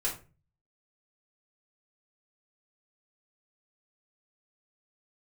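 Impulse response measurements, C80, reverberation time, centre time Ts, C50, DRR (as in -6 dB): 14.5 dB, 0.35 s, 22 ms, 8.5 dB, -5.0 dB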